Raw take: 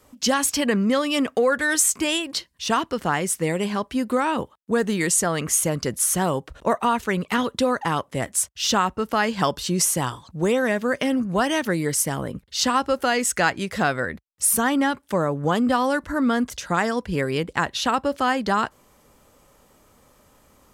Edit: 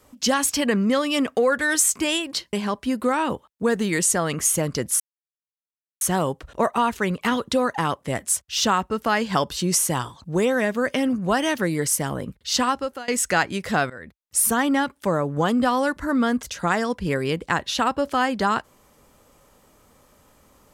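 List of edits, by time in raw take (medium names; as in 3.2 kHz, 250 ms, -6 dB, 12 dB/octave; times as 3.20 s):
2.53–3.61 s: delete
6.08 s: insert silence 1.01 s
12.70–13.15 s: fade out, to -23.5 dB
13.97–14.48 s: fade in, from -19 dB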